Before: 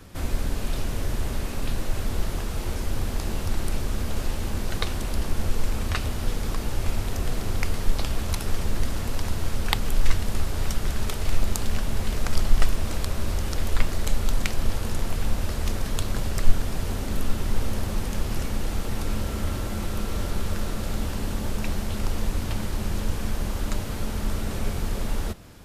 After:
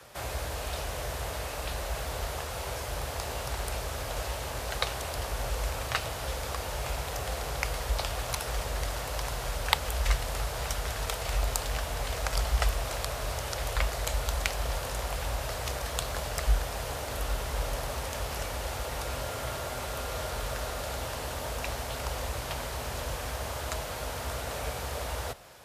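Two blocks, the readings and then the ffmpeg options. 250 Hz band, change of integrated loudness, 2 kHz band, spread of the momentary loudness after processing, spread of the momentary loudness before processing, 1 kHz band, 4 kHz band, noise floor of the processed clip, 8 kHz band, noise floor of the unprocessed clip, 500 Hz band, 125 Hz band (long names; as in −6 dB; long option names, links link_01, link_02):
−13.5 dB, −3.0 dB, +0.5 dB, 5 LU, 2 LU, +2.0 dB, 0.0 dB, −37 dBFS, 0.0 dB, −31 dBFS, +0.5 dB, −6.5 dB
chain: -af "lowshelf=frequency=360:width_type=q:width=1.5:gain=-13,afreqshift=39"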